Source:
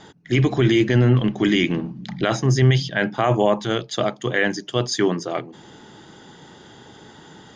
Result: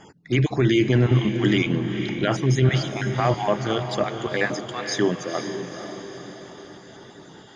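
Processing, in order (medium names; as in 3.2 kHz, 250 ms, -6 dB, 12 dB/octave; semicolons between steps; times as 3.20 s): random holes in the spectrogram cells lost 22%; echo that smears into a reverb 488 ms, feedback 53%, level -8 dB; trim -2 dB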